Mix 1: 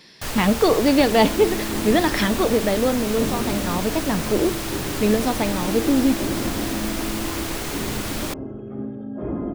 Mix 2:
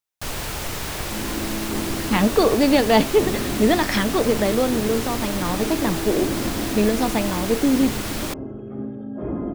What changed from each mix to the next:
speech: entry +1.75 s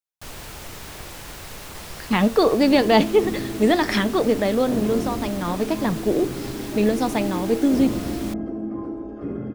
first sound −8.5 dB
second sound: entry +1.50 s

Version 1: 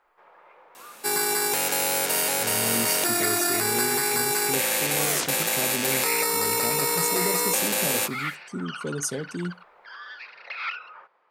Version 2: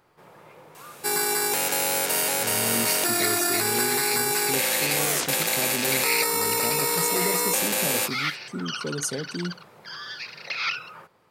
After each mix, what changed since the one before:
first sound: remove band-pass filter 700–2,100 Hz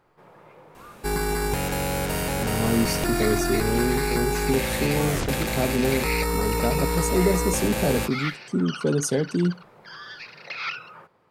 speech +9.0 dB
second sound: remove high-pass filter 380 Hz 12 dB per octave
master: add high-shelf EQ 3,400 Hz −10.5 dB

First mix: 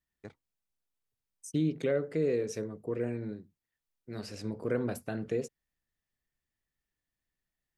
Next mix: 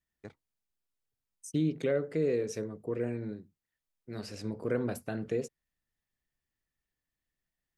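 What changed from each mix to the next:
nothing changed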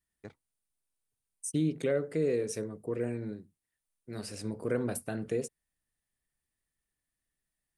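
second voice: add parametric band 9,400 Hz +14.5 dB 0.45 octaves

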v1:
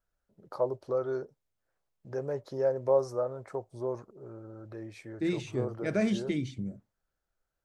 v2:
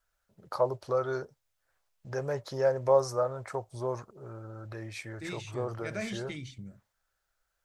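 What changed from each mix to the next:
first voice +10.5 dB
master: add parametric band 310 Hz −12.5 dB 2.5 octaves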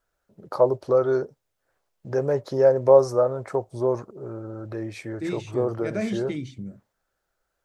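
master: add parametric band 310 Hz +12.5 dB 2.5 octaves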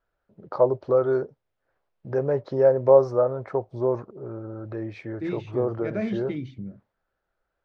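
master: add high-frequency loss of the air 250 metres

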